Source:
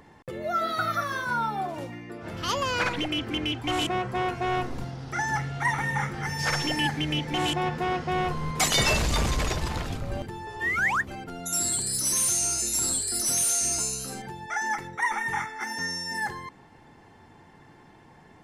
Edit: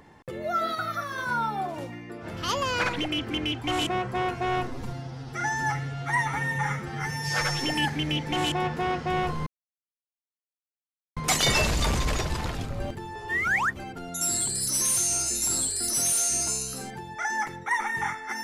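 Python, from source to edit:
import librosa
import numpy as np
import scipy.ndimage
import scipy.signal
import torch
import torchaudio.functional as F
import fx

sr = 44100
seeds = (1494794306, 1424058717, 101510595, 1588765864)

y = fx.edit(x, sr, fx.clip_gain(start_s=0.75, length_s=0.43, db=-3.5),
    fx.stretch_span(start_s=4.68, length_s=1.97, factor=1.5),
    fx.insert_silence(at_s=8.48, length_s=1.7), tone=tone)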